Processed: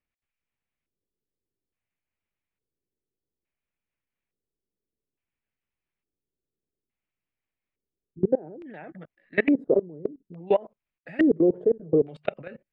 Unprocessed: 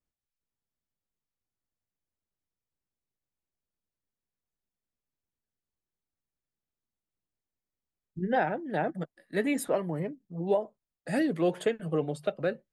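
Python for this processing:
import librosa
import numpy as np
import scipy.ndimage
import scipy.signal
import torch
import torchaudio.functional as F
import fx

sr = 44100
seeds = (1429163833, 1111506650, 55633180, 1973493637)

y = fx.filter_lfo_lowpass(x, sr, shape='square', hz=0.58, low_hz=410.0, high_hz=2400.0, q=3.2)
y = fx.level_steps(y, sr, step_db=24)
y = y * librosa.db_to_amplitude(6.5)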